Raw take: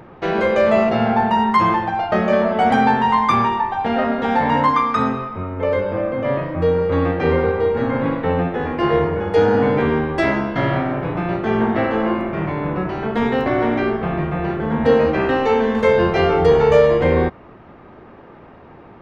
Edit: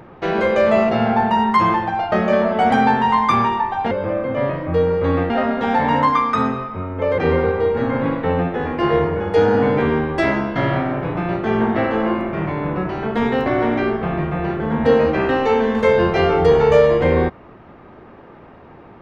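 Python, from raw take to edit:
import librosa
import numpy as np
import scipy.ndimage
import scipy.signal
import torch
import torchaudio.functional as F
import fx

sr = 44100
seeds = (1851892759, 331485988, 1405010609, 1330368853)

y = fx.edit(x, sr, fx.move(start_s=5.79, length_s=1.39, to_s=3.91), tone=tone)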